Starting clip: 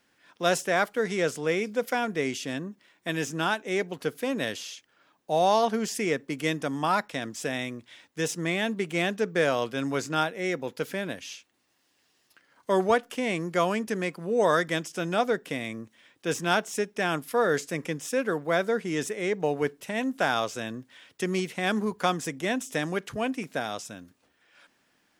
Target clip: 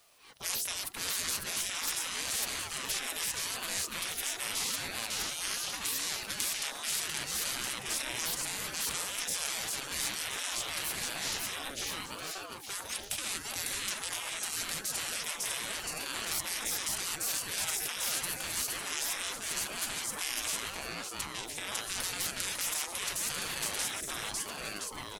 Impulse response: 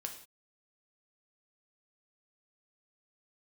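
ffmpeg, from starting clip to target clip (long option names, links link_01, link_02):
-filter_complex "[0:a]equalizer=frequency=250:width_type=o:width=0.67:gain=6,equalizer=frequency=4000:width_type=o:width=0.67:gain=7,equalizer=frequency=10000:width_type=o:width=0.67:gain=8,aecho=1:1:550|1018|1415|1753|2040:0.631|0.398|0.251|0.158|0.1,asettb=1/sr,asplit=3[link_01][link_02][link_03];[link_01]atrim=end=20.754[link_04];[link_02]atrim=start=20.75:end=21.72,asetpts=PTS-STARTPTS,afade=type=in:duration=0.004:curve=qsin,afade=type=out:start_time=0.966:duration=0.004:curve=qsin,acompressor=threshold=-31dB:ratio=6[link_05];[link_03]atrim=start=21.716[link_06];[link_04][link_05]acrossfade=duration=0.004:curve1=hsin:curve2=qsin[link_07];[link_07][link_06]acrossfade=duration=0.004:curve1=qsin:curve2=hsin,crystalizer=i=1.5:c=0,afftfilt=real='re*lt(hypot(re,im),0.0708)':imag='im*lt(hypot(re,im),0.0708)':win_size=1024:overlap=0.75,aeval=exprs='val(0)*sin(2*PI*550*n/s+550*0.75/0.81*sin(2*PI*0.81*n/s))':channel_layout=same,volume=1dB"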